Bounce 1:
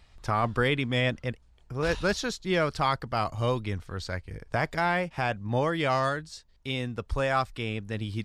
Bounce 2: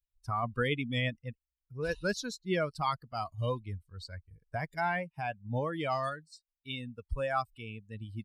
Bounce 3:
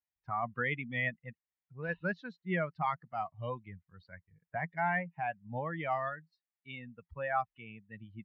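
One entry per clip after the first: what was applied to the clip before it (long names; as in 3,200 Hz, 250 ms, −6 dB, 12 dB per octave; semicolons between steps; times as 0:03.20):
spectral dynamics exaggerated over time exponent 2; level −2 dB
loudspeaker in its box 150–2,600 Hz, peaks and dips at 170 Hz +8 dB, 280 Hz −6 dB, 440 Hz −6 dB, 780 Hz +6 dB, 1,900 Hz +9 dB; level −3.5 dB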